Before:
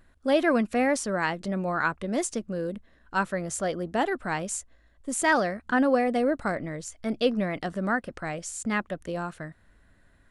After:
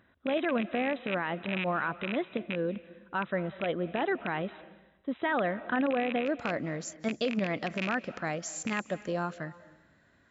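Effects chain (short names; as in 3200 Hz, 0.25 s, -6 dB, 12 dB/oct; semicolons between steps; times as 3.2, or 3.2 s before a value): rattling part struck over -33 dBFS, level -16 dBFS; HPF 120 Hz 12 dB/oct; limiter -20.5 dBFS, peak gain reduction 10 dB; brick-wall FIR low-pass 4000 Hz, from 6.25 s 7600 Hz; reverb RT60 0.90 s, pre-delay 0.156 s, DRR 17 dB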